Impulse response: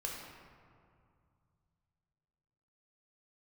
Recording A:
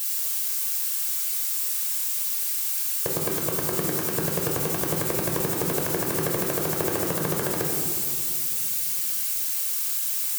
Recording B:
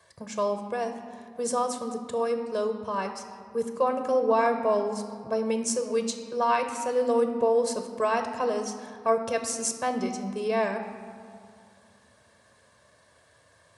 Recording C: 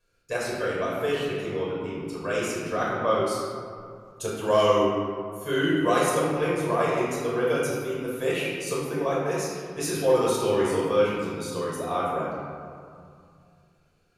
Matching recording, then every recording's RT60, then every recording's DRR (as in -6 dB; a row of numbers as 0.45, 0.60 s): A; 2.3, 2.3, 2.3 s; -1.5, 6.5, -6.0 dB